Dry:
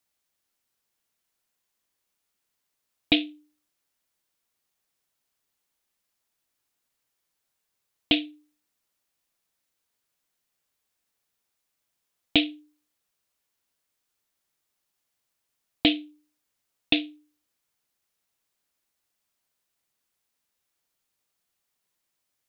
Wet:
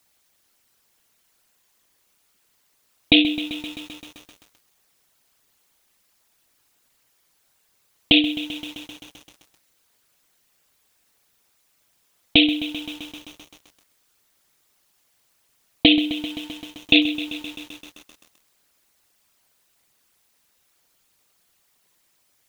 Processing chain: resonances exaggerated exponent 1.5; loudness maximiser +15 dB; bit-crushed delay 130 ms, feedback 80%, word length 6-bit, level -13.5 dB; trim -1 dB

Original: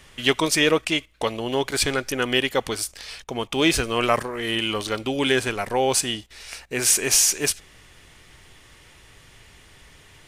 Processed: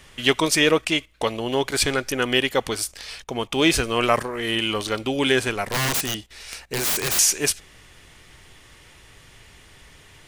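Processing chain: 5.63–7.19 s: integer overflow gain 18 dB; trim +1 dB

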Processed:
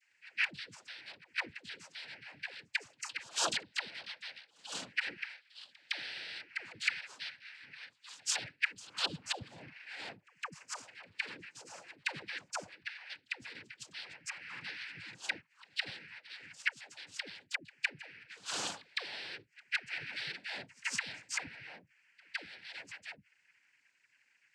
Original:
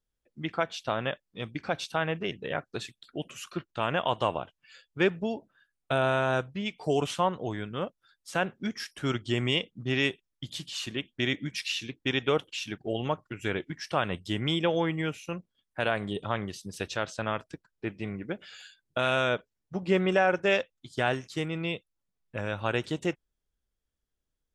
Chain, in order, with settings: split-band scrambler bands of 2 kHz; spectral replace 8.88–9.82 s, 810–2800 Hz both; inverted gate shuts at -29 dBFS, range -29 dB; in parallel at -8 dB: bit crusher 5-bit; on the sum: tone controls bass +6 dB, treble +5 dB; noise-vocoded speech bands 8; phase dispersion lows, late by 98 ms, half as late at 530 Hz; pre-echo 161 ms -24 dB; trim +9.5 dB

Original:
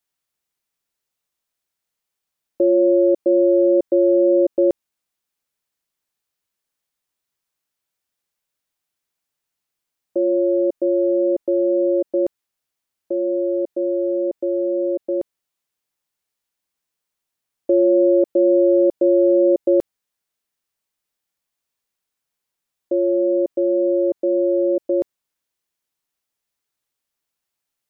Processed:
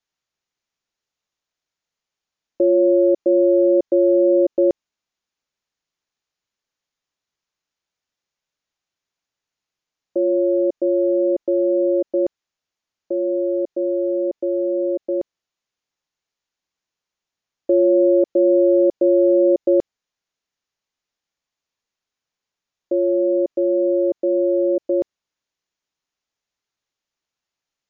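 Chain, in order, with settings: brick-wall FIR low-pass 7.2 kHz

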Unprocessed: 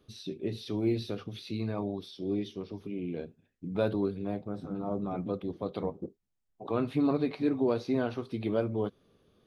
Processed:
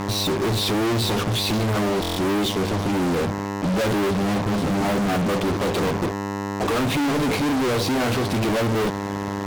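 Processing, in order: mains buzz 100 Hz, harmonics 11, -50 dBFS -3 dB/octave; fuzz box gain 53 dB, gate -53 dBFS; buffer glitch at 2.01 s, samples 1024, times 6; trim -7 dB

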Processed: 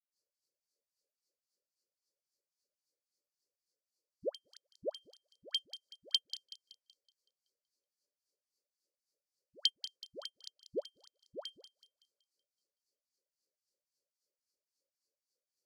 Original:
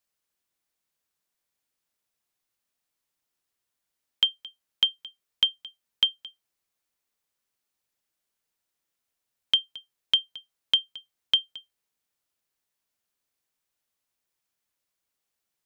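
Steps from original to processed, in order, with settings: Chebyshev band-stop 580–4500 Hz, order 5; bass shelf 360 Hz -10 dB; waveshaping leveller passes 3; LFO band-pass sine 3.7 Hz 460–3600 Hz; phase dispersion highs, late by 121 ms, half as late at 650 Hz; on a send: feedback echo behind a high-pass 188 ms, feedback 42%, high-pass 3.7 kHz, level -9 dB; on the sum: trim +17 dB

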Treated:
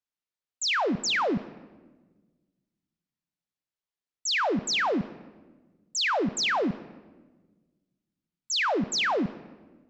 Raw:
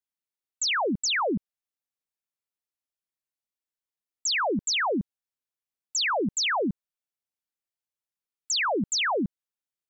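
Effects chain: low-pass 6.3 kHz 12 dB/octave; on a send: bass shelf 200 Hz -4 dB + reverberation RT60 1.3 s, pre-delay 7 ms, DRR 13.5 dB

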